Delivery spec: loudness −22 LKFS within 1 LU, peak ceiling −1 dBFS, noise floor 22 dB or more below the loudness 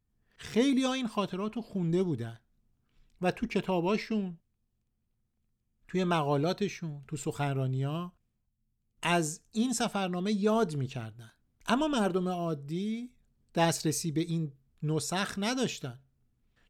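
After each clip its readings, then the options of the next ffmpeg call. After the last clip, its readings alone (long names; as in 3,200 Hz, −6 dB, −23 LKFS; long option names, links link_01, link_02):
integrated loudness −31.5 LKFS; sample peak −12.5 dBFS; target loudness −22.0 LKFS
→ -af "volume=9.5dB"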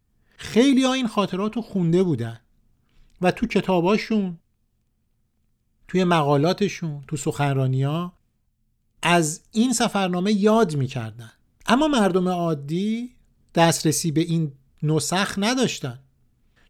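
integrated loudness −22.0 LKFS; sample peak −3.0 dBFS; background noise floor −69 dBFS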